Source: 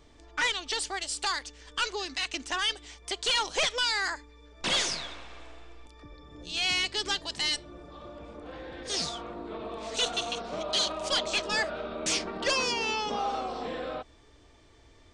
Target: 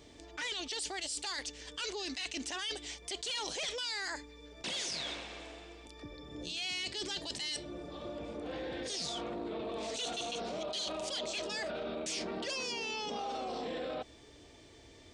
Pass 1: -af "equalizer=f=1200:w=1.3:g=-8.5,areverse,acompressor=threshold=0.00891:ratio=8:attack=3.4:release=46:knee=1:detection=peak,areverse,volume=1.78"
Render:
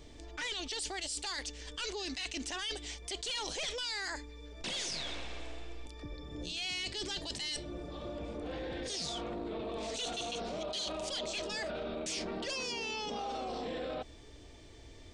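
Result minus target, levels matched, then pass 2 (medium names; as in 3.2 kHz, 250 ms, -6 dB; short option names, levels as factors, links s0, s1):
125 Hz band +5.0 dB
-af "highpass=f=140:p=1,equalizer=f=1200:w=1.3:g=-8.5,areverse,acompressor=threshold=0.00891:ratio=8:attack=3.4:release=46:knee=1:detection=peak,areverse,volume=1.78"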